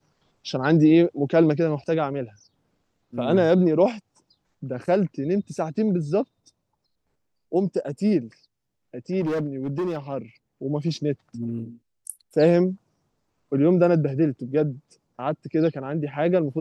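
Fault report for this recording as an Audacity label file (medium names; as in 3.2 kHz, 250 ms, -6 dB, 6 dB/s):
9.200000	9.970000	clipped -22 dBFS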